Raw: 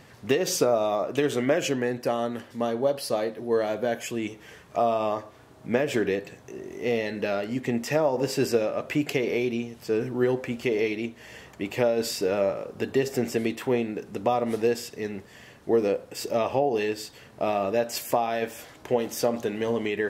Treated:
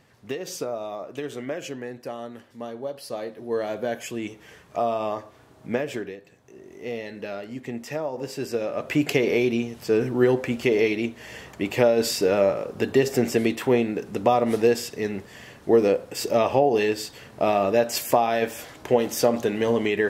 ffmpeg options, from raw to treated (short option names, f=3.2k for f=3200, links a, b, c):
-af "volume=17.5dB,afade=t=in:st=2.95:d=0.83:silence=0.446684,afade=t=out:st=5.72:d=0.45:silence=0.223872,afade=t=in:st=6.17:d=0.59:silence=0.398107,afade=t=in:st=8.48:d=0.6:silence=0.298538"